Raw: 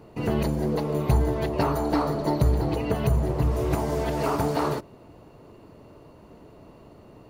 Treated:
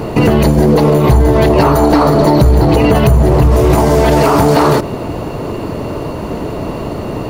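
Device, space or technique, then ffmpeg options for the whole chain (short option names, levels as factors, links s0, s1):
loud club master: -af "acompressor=threshold=0.0501:ratio=2,asoftclip=type=hard:threshold=0.106,alimiter=level_in=29.9:limit=0.891:release=50:level=0:latency=1,volume=0.891"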